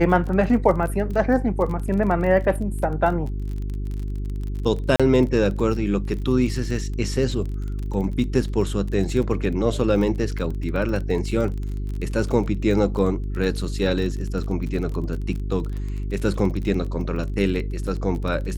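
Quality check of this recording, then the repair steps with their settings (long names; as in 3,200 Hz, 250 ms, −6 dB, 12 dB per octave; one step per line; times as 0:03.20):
surface crackle 29 per second −29 dBFS
mains hum 50 Hz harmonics 8 −27 dBFS
0:04.96–0:05.00: drop-out 36 ms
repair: click removal
hum removal 50 Hz, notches 8
repair the gap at 0:04.96, 36 ms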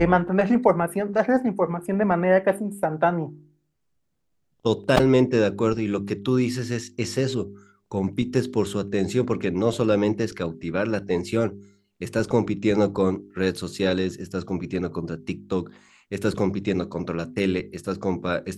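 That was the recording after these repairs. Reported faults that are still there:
none of them is left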